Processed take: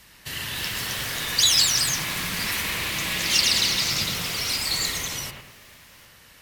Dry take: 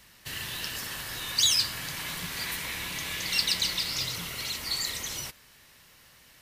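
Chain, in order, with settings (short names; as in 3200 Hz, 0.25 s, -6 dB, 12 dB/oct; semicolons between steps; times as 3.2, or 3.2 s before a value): wow and flutter 24 cents; echoes that change speed 0.336 s, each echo +2 st, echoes 2; analogue delay 0.103 s, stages 2048, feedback 43%, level -4 dB; gain +4 dB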